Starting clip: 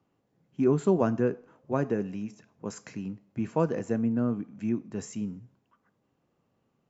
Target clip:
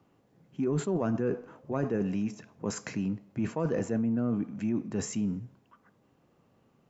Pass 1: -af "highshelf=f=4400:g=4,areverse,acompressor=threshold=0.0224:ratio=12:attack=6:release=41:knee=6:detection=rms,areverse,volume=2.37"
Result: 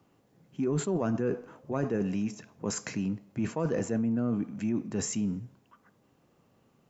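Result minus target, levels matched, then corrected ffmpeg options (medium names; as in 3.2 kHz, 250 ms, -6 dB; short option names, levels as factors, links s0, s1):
8 kHz band +4.5 dB
-af "highshelf=f=4400:g=-2.5,areverse,acompressor=threshold=0.0224:ratio=12:attack=6:release=41:knee=6:detection=rms,areverse,volume=2.37"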